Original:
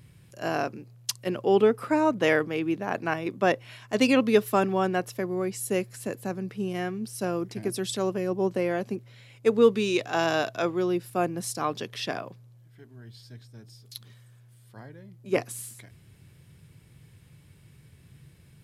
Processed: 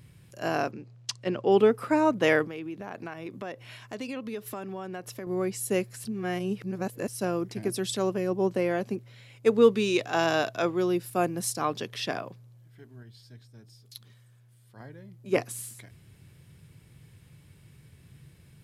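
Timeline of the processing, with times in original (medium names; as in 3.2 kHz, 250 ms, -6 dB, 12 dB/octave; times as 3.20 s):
0.71–1.52 s: Bessel low-pass 5.5 kHz, order 4
2.44–5.27 s: compression 4:1, threshold -35 dBFS
6.05–7.08 s: reverse
10.79–11.50 s: treble shelf 6.2 kHz +5.5 dB
13.03–14.80 s: gain -4 dB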